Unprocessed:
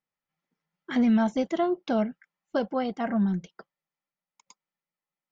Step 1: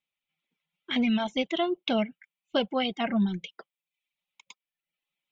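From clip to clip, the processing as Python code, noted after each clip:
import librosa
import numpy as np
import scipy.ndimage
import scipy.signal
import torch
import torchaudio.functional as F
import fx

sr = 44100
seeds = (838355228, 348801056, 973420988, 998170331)

y = fx.dereverb_blind(x, sr, rt60_s=0.61)
y = fx.band_shelf(y, sr, hz=2900.0, db=14.5, octaves=1.0)
y = fx.rider(y, sr, range_db=10, speed_s=2.0)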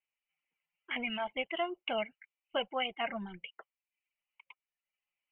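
y = scipy.signal.sosfilt(scipy.signal.cheby1(6, 3, 3000.0, 'lowpass', fs=sr, output='sos'), x)
y = fx.peak_eq(y, sr, hz=210.0, db=-15.0, octaves=2.3)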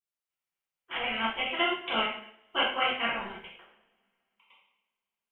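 y = fx.spec_clip(x, sr, under_db=18)
y = fx.rev_double_slope(y, sr, seeds[0], early_s=0.81, late_s=2.9, knee_db=-25, drr_db=-7.5)
y = fx.upward_expand(y, sr, threshold_db=-46.0, expansion=1.5)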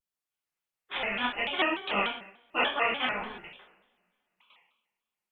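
y = fx.vibrato_shape(x, sr, shape='square', rate_hz=3.4, depth_cents=160.0)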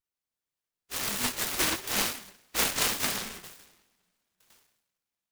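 y = fx.noise_mod_delay(x, sr, seeds[1], noise_hz=1600.0, depth_ms=0.49)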